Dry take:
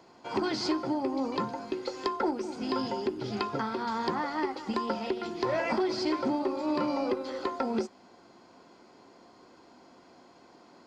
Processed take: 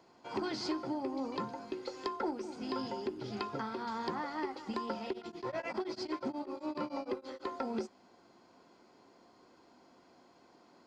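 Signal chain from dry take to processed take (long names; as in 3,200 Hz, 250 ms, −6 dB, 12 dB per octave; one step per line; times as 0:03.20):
0:05.12–0:07.46: tremolo along a rectified sine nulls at 11 Hz → 5.5 Hz
level −6.5 dB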